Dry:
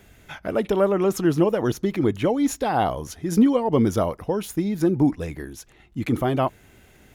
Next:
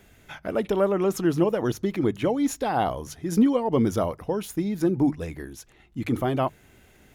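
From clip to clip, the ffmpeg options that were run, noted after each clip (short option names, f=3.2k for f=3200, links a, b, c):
-af "bandreject=f=50:t=h:w=6,bandreject=f=100:t=h:w=6,bandreject=f=150:t=h:w=6,volume=-2.5dB"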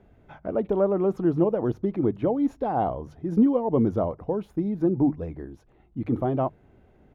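-af "firequalizer=gain_entry='entry(710,0);entry(1800,-13);entry(7500,-29)':delay=0.05:min_phase=1"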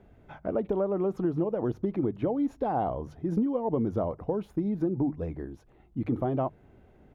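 -af "acompressor=threshold=-24dB:ratio=6"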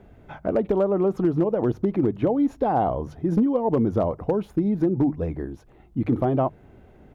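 -af "volume=19.5dB,asoftclip=hard,volume=-19.5dB,volume=6.5dB"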